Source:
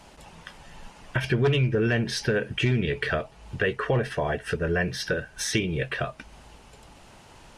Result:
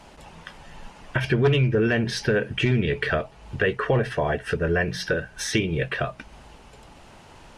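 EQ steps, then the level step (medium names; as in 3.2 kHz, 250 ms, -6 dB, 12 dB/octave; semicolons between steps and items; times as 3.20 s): treble shelf 4.6 kHz -5.5 dB; hum notches 60/120/180 Hz; +3.0 dB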